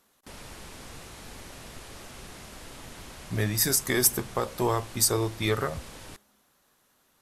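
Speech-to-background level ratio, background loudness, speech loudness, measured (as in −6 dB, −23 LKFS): 18.5 dB, −44.5 LKFS, −26.0 LKFS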